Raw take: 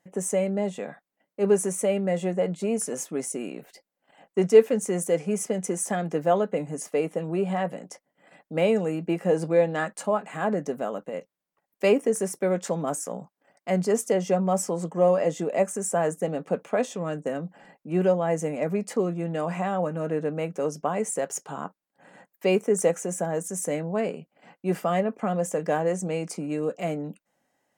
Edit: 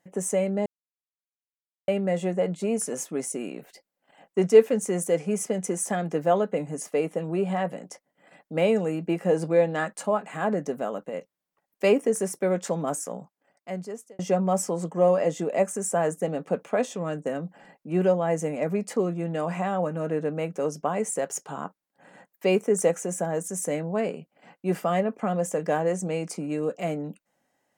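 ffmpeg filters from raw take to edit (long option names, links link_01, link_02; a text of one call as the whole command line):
ffmpeg -i in.wav -filter_complex "[0:a]asplit=4[link_01][link_02][link_03][link_04];[link_01]atrim=end=0.66,asetpts=PTS-STARTPTS,afade=type=out:start_time=0.656:duration=0.004:curve=hsin[link_05];[link_02]atrim=start=0.66:end=1.88,asetpts=PTS-STARTPTS,volume=0[link_06];[link_03]atrim=start=1.88:end=14.19,asetpts=PTS-STARTPTS,afade=type=in:duration=0.004:curve=hsin,afade=type=out:start_time=11.09:duration=1.22[link_07];[link_04]atrim=start=14.19,asetpts=PTS-STARTPTS,afade=type=in:duration=0.004:curve=hsin[link_08];[link_05][link_06][link_07][link_08]concat=n=4:v=0:a=1" out.wav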